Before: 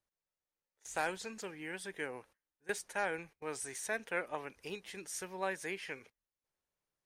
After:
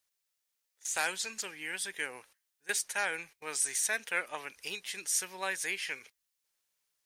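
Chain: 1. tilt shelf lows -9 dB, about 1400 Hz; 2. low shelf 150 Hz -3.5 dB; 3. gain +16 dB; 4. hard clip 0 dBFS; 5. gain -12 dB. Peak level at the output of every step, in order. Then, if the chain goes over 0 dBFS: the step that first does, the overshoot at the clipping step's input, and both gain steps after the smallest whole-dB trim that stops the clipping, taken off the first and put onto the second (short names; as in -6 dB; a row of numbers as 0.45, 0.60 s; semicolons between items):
-20.0, -20.0, -4.0, -4.0, -16.0 dBFS; no overload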